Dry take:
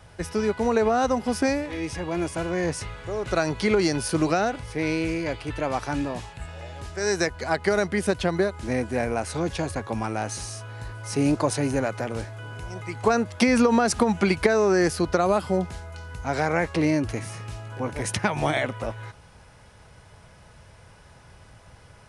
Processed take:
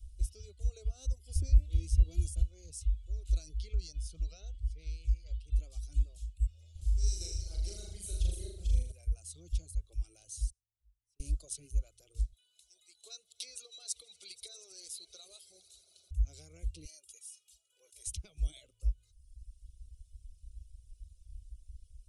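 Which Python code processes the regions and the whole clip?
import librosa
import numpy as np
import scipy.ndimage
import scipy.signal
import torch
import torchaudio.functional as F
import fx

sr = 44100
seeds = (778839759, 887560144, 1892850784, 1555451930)

y = fx.chain(x, sr, fx.low_shelf(hz=360.0, db=11.5),
    fx.band_squash(depth_pct=100), at=(1.35, 2.43))
y = fx.chain(y, sr, fx.lowpass(hz=5400.0, slope=12),
    fx.peak_eq(hz=330.0, db=-10.5, octaves=0.36), at=(3.58, 5.52))
y = fx.chain(y, sr, fx.reverse_delay(ms=247, wet_db=-4.0),
    fx.room_flutter(wall_m=6.8, rt60_s=1.3), at=(6.71, 8.92))
y = fx.chain(y, sr, fx.high_shelf(hz=6100.0, db=-9.0),
    fx.gate_flip(shuts_db=-31.0, range_db=-40),
    fx.env_flatten(amount_pct=50), at=(10.5, 11.2))
y = fx.chain(y, sr, fx.highpass(hz=660.0, slope=12),
    fx.peak_eq(hz=3900.0, db=13.0, octaves=0.22),
    fx.echo_swell(ms=80, loudest=5, wet_db=-18.0), at=(12.32, 16.11))
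y = fx.chain(y, sr, fx.highpass(hz=760.0, slope=12),
    fx.high_shelf(hz=9500.0, db=3.5),
    fx.comb(ms=2.1, depth=0.83), at=(16.85, 18.07))
y = scipy.signal.sosfilt(scipy.signal.cheby2(4, 40, [110.0, 1900.0], 'bandstop', fs=sr, output='sos'), y)
y = fx.dereverb_blind(y, sr, rt60_s=1.3)
y = fx.curve_eq(y, sr, hz=(290.0, 4700.0, 7600.0), db=(0, -29, -20))
y = y * 10.0 ** (12.5 / 20.0)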